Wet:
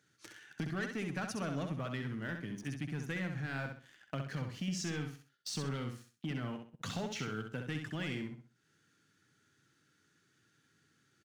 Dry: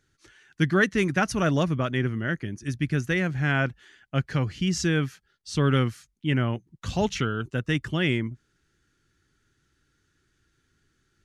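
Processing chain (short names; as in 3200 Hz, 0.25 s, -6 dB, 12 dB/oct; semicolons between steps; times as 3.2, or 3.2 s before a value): HPF 120 Hz 24 dB/oct; notch 370 Hz, Q 12; sample leveller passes 2; compressor 4:1, threshold -45 dBFS, peak gain reduction 25 dB; feedback echo 65 ms, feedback 30%, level -6 dB; gain +2.5 dB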